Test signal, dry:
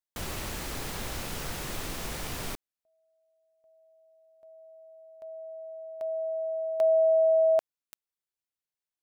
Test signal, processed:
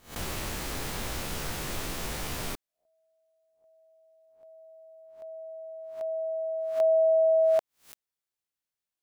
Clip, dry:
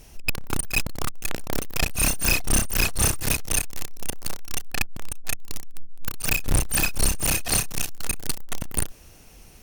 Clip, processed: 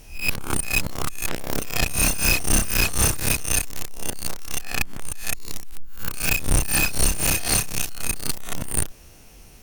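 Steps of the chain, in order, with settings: spectral swells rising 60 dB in 0.35 s

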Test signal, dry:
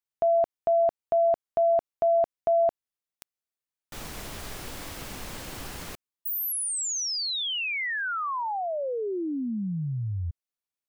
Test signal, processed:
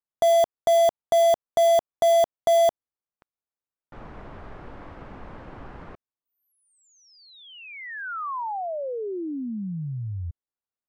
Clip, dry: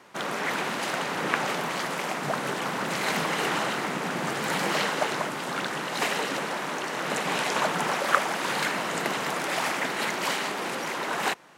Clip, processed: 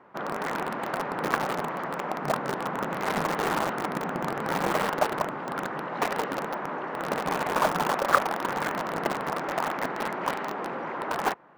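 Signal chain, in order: Chebyshev low-pass 1200 Hz, order 2; in parallel at -6 dB: bit-crush 4-bit

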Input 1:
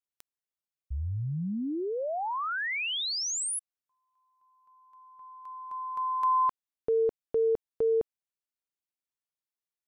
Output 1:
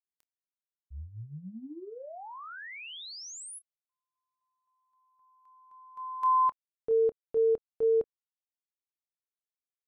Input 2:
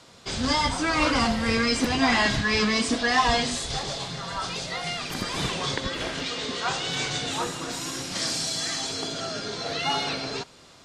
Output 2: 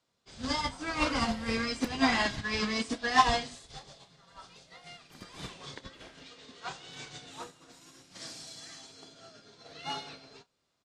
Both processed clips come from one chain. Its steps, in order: doubler 27 ms -11 dB; upward expander 2.5:1, over -35 dBFS

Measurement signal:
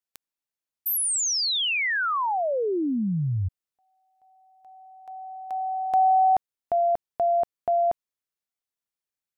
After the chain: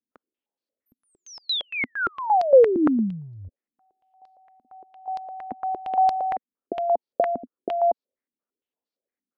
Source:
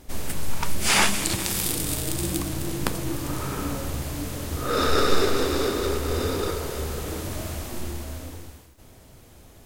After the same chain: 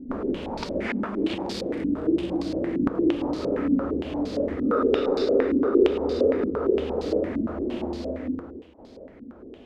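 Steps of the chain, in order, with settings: HPF 89 Hz 6 dB/oct; low shelf 420 Hz +7 dB; compressor 6:1, threshold -25 dBFS; ten-band EQ 125 Hz -11 dB, 250 Hz +11 dB, 500 Hz +10 dB; stepped low-pass 8.7 Hz 250–4500 Hz; gain -6 dB

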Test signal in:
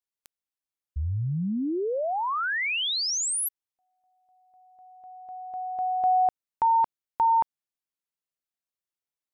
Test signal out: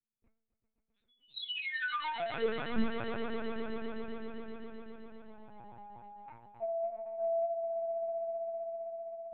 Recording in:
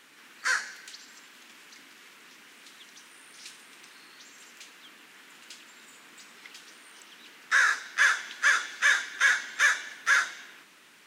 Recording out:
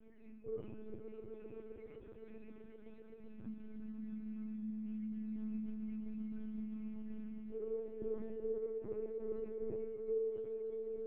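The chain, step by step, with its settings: spectrum mirrored in octaves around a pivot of 780 Hz; notches 50/100/150/200/250/300/350/400 Hz; reverse; compressor 6:1, threshold -30 dBFS; reverse; metallic resonator 220 Hz, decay 0.58 s, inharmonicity 0.008; on a send: swelling echo 0.13 s, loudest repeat 5, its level -10 dB; on the sum: LPC vocoder at 8 kHz pitch kept; gain +12.5 dB

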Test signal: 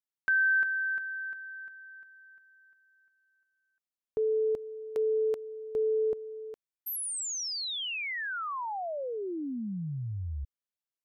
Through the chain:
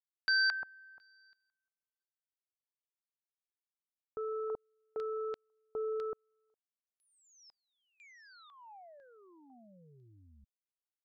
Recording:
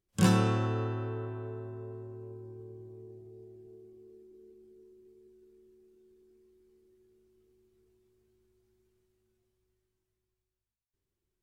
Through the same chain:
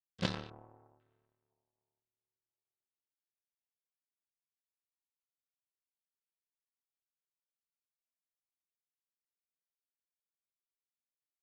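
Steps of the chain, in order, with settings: power-law curve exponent 3; LFO low-pass square 1 Hz 860–4200 Hz; gain -3 dB

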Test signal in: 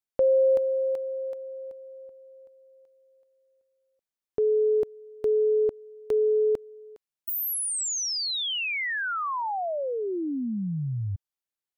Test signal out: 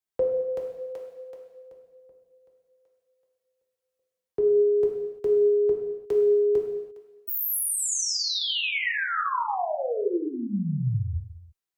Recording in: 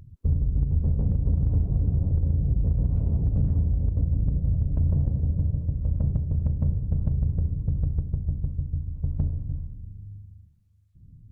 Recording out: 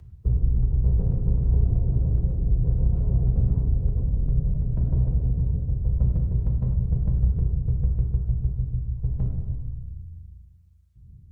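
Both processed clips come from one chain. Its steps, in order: notch comb 300 Hz; non-linear reverb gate 0.37 s falling, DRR 0 dB; frequency shift -16 Hz

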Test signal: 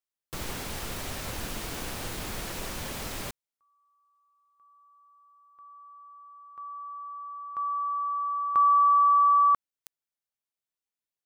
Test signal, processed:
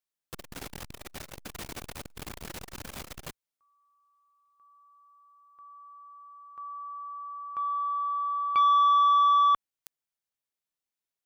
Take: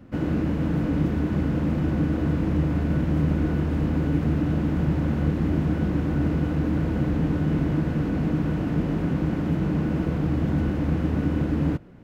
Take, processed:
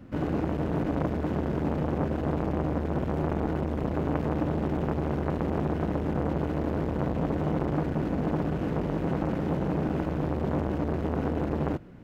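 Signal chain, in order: core saturation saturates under 790 Hz

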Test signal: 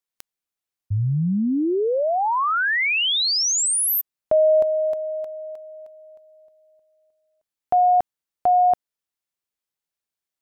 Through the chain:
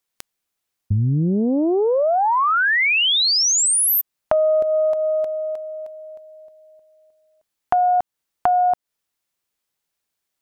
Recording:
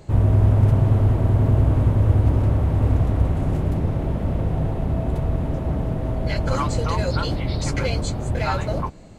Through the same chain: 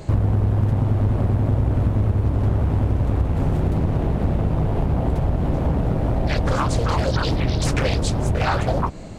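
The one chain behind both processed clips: compressor 5:1, threshold -25 dBFS; Doppler distortion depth 0.91 ms; gain +8.5 dB

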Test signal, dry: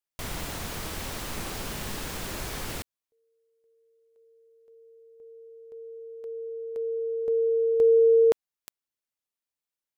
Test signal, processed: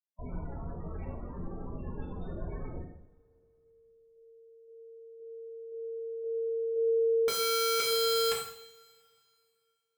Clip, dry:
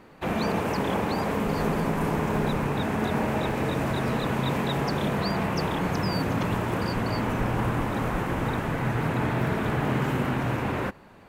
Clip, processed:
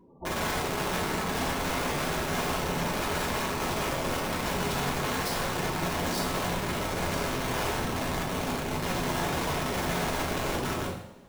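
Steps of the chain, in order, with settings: loudest bins only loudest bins 16; wrapped overs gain 24 dB; two-slope reverb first 0.67 s, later 2.8 s, from -25 dB, DRR -4.5 dB; gain -5.5 dB

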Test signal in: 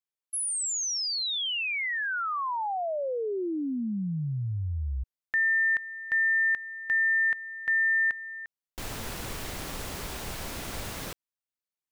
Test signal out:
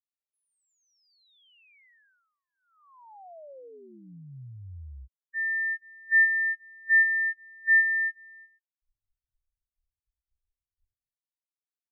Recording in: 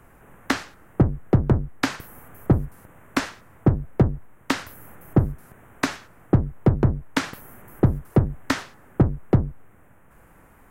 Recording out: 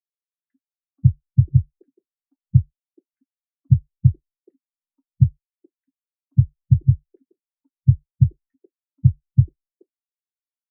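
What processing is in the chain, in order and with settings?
three bands offset in time highs, lows, mids 40/480 ms, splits 270/1400 Hz; spectral expander 4:1; gain +6.5 dB

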